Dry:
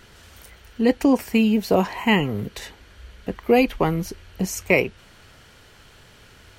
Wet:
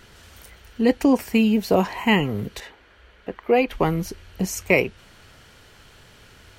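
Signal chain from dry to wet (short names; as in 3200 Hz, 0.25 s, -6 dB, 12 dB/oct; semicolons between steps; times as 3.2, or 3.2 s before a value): 2.6–3.71 tone controls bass -11 dB, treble -13 dB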